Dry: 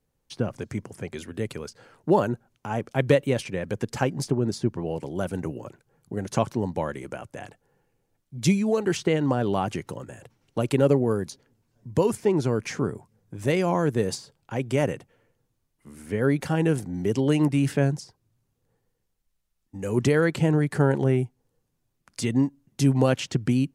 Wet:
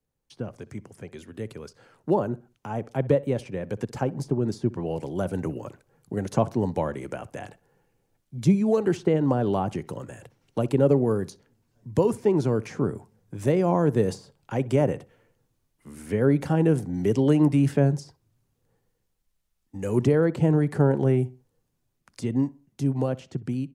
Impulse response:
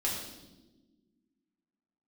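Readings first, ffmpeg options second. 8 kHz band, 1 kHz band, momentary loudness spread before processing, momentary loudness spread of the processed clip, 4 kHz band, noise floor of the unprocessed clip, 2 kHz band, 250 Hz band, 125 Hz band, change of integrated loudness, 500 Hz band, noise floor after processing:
-8.0 dB, -1.0 dB, 15 LU, 17 LU, -8.5 dB, -75 dBFS, -6.5 dB, +0.5 dB, +0.5 dB, +0.5 dB, +0.5 dB, -75 dBFS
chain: -filter_complex "[0:a]acrossover=split=130|1100[a][b][c];[c]acompressor=threshold=-43dB:ratio=6[d];[a][b][d]amix=inputs=3:normalize=0,asplit=2[e][f];[f]adelay=63,lowpass=f=2.7k:p=1,volume=-20dB,asplit=2[g][h];[h]adelay=63,lowpass=f=2.7k:p=1,volume=0.35,asplit=2[i][j];[j]adelay=63,lowpass=f=2.7k:p=1,volume=0.35[k];[e][g][i][k]amix=inputs=4:normalize=0,dynaudnorm=f=160:g=21:m=11.5dB,volume=-6.5dB"

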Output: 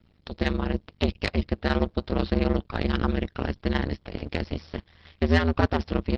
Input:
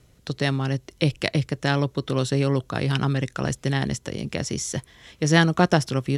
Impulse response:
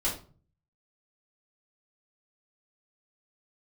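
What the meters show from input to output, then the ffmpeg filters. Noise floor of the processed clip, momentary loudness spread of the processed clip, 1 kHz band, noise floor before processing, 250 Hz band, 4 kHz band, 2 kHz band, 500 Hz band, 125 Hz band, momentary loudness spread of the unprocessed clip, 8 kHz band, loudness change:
-62 dBFS, 10 LU, -4.0 dB, -57 dBFS, -2.0 dB, -6.0 dB, -4.5 dB, -2.5 dB, -5.5 dB, 10 LU, under -20 dB, -3.0 dB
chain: -af "aresample=11025,aeval=exprs='max(val(0),0)':c=same,aresample=44100,aeval=exprs='val(0)*sin(2*PI*80*n/s)':c=same,asoftclip=type=tanh:threshold=-9dB,volume=3dB" -ar 48000 -c:a libopus -b:a 16k

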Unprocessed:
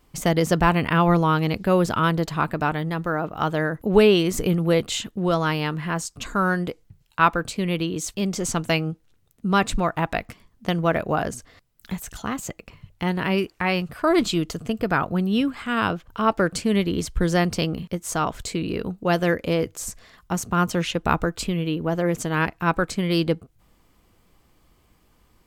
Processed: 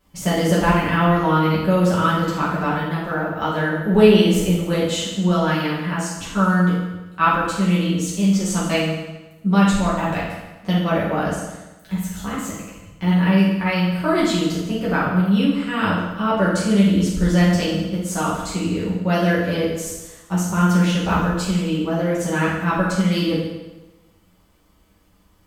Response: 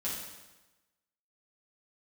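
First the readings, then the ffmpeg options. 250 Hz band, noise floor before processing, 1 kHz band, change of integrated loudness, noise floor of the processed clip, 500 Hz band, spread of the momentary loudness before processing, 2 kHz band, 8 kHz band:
+5.5 dB, -61 dBFS, +2.0 dB, +3.5 dB, -56 dBFS, +2.0 dB, 10 LU, +2.0 dB, +2.0 dB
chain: -filter_complex "[1:a]atrim=start_sample=2205[a];[0:a][a]afir=irnorm=-1:irlink=0,volume=-1.5dB"

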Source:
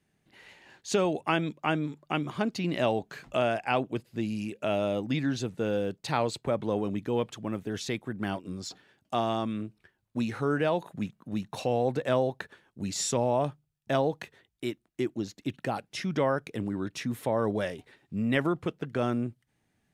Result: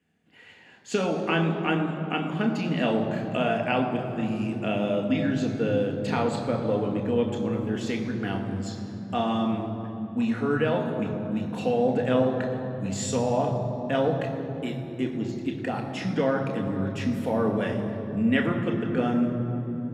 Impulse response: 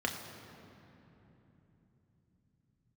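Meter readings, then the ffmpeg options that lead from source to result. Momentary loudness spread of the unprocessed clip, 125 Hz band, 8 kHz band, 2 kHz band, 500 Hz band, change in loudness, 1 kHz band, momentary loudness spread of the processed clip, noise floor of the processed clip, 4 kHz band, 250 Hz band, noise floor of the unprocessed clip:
10 LU, +5.5 dB, -2.0 dB, +3.0 dB, +3.0 dB, +3.5 dB, +2.0 dB, 7 LU, -39 dBFS, +1.0 dB, +6.0 dB, -76 dBFS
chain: -filter_complex "[1:a]atrim=start_sample=2205,asetrate=43218,aresample=44100[a];[0:a][a]afir=irnorm=-1:irlink=0,volume=-4dB"

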